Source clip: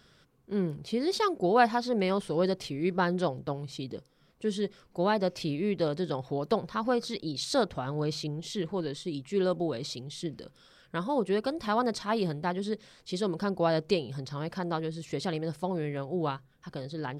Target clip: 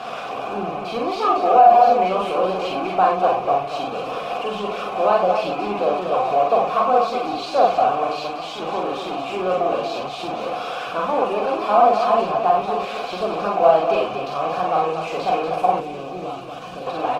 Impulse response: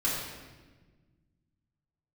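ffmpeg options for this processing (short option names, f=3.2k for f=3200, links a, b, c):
-filter_complex "[0:a]aeval=exprs='val(0)+0.5*0.0562*sgn(val(0))':c=same,highpass=f=120:p=1,asettb=1/sr,asplit=3[a][b][c];[a]atrim=end=8.074[d];[b]atrim=start=8.07:end=8.62,asetpts=PTS-STARTPTS,afade=t=in:d=0.004:c=qsin,afade=t=out:st=0.546:d=0.004:c=qsin,lowshelf=f=230:g=-11[e];[c]atrim=start=8.616[f];[d][e]acrossfade=d=0.004:c1=hsin:c2=qsin[g];[g][f]acrossfade=d=0.004:c1=qsin:c2=hsin,asplit=3[h][i][j];[h]bandpass=f=730:t=q:w=8,volume=0dB[k];[i]bandpass=f=1.09k:t=q:w=8,volume=-6dB[l];[j]bandpass=f=2.44k:t=q:w=8,volume=-9dB[m];[k][l][m]amix=inputs=3:normalize=0,highshelf=f=3.5k:g=-6.5,asplit=2[n][o];[o]adelay=48,volume=-4dB[p];[n][p]amix=inputs=2:normalize=0,aecho=1:1:43|44|54|237:0.2|0.708|0.188|0.473,asettb=1/sr,asplit=3[q][r][s];[q]atrim=end=15.804[t];[r]atrim=start=15.8:end=16.87,asetpts=PTS-STARTPTS,afade=t=in:d=0.004:c=qsin,afade=t=out:st=1.066:d=0.004:c=qsin,acrossover=split=380|3000[u][v][w];[v]acompressor=threshold=-56dB:ratio=2.5[x];[u][x][w]amix=inputs=3:normalize=0[y];[s]atrim=start=16.866[z];[t][y]acrossfade=d=0.004:c1=hsin:c2=qsin[aa];[aa][z]acrossfade=d=0.004:c1=qsin:c2=hsin,alimiter=level_in=18dB:limit=-1dB:release=50:level=0:latency=1,volume=-2.5dB" -ar 48000 -c:a libopus -b:a 16k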